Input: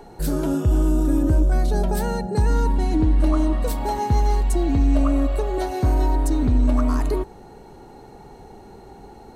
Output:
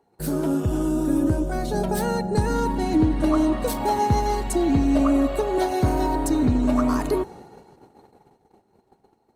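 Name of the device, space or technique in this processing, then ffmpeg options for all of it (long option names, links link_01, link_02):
video call: -af "highpass=100,dynaudnorm=framelen=320:gausssize=13:maxgain=3dB,agate=range=-21dB:threshold=-41dB:ratio=16:detection=peak" -ar 48000 -c:a libopus -b:a 24k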